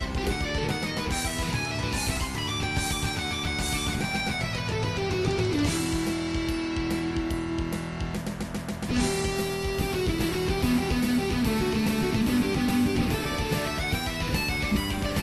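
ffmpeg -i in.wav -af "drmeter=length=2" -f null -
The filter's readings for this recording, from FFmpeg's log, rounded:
Channel 1: DR: 9.4
Overall DR: 9.4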